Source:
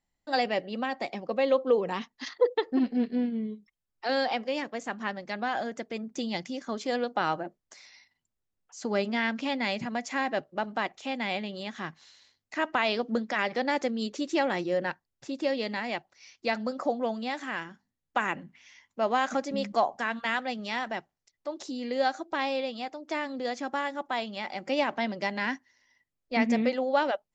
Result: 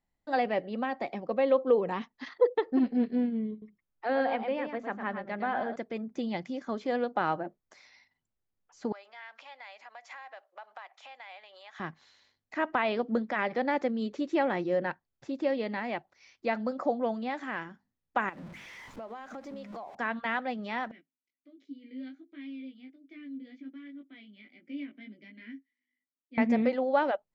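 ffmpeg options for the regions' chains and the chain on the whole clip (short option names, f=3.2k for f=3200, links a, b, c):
-filter_complex "[0:a]asettb=1/sr,asplit=3[a][b][c];[a]atrim=end=3.514[d];[b]atrim=start=3.51:end=5.76,asetpts=PTS-STARTPTS,afade=t=in:d=0.004:c=qsin,afade=t=out:st=2.246:d=0.004:c=qsin,lowpass=2.8k,bandreject=f=60:t=h:w=6,bandreject=f=120:t=h:w=6,bandreject=f=180:t=h:w=6,bandreject=f=240:t=h:w=6,bandreject=f=300:t=h:w=6,bandreject=f=360:t=h:w=6,aecho=1:1:108:0.422,atrim=end_sample=99225[e];[c]atrim=start=5.756[f];[d][e]acrossfade=d=0.004:c1=hsin:c2=qsin[g];[g][f]acrossfade=d=0.004:c1=qsin:c2=hsin,asettb=1/sr,asplit=3[h][i][j];[h]atrim=end=8.924[k];[i]atrim=start=8.92:end=11.8,asetpts=PTS-STARTPTS,afade=t=in:d=0.004:c=qsin,afade=t=out:st=2.876:d=0.004:c=qsin,acompressor=threshold=-36dB:ratio=12:attack=3.2:release=140:knee=1:detection=peak,highpass=f=710:w=0.5412,highpass=f=710:w=1.3066[l];[j]atrim=start=11.796[m];[k][l]acrossfade=d=0.004:c1=hsin:c2=qsin[n];[n][m]acrossfade=d=0.004:c1=qsin:c2=hsin,asettb=1/sr,asplit=3[o][p][q];[o]atrim=end=18.294[r];[p]atrim=start=18.29:end=19.95,asetpts=PTS-STARTPTS,afade=t=in:d=0.004:c=qsin,afade=t=out:st=1.656:d=0.004:c=qsin,aeval=exprs='val(0)+0.5*0.0106*sgn(val(0))':c=same,bandreject=f=50:t=h:w=6,bandreject=f=100:t=h:w=6,bandreject=f=150:t=h:w=6,bandreject=f=200:t=h:w=6,bandreject=f=250:t=h:w=6,bandreject=f=300:t=h:w=6,bandreject=f=350:t=h:w=6,bandreject=f=400:t=h:w=6,acompressor=threshold=-39dB:ratio=6:attack=3.2:release=140:knee=1:detection=peak[s];[q]atrim=start=19.946[t];[r][s]acrossfade=d=0.004:c1=hsin:c2=qsin[u];[u][t]acrossfade=d=0.004:c1=qsin:c2=hsin,asettb=1/sr,asplit=3[v][w][x];[v]atrim=end=20.914[y];[w]atrim=start=20.91:end=26.38,asetpts=PTS-STARTPTS,afade=t=in:d=0.004:c=qsin,afade=t=out:st=5.466:d=0.004:c=qsin,flanger=delay=17.5:depth=2:speed=1.3,asplit=3[z][aa][ab];[z]bandpass=f=270:t=q:w=8,volume=0dB[ac];[aa]bandpass=f=2.29k:t=q:w=8,volume=-6dB[ad];[ab]bandpass=f=3.01k:t=q:w=8,volume=-9dB[ae];[ac][ad][ae]amix=inputs=3:normalize=0[af];[x]atrim=start=26.376[ag];[y][af]acrossfade=d=0.004:c1=hsin:c2=qsin[ah];[ah][ag]acrossfade=d=0.004:c1=qsin:c2=hsin,aemphasis=mode=reproduction:type=75kf,bandreject=f=2.8k:w=26,acrossover=split=3700[ai][aj];[aj]acompressor=threshold=-57dB:ratio=4:attack=1:release=60[ak];[ai][ak]amix=inputs=2:normalize=0"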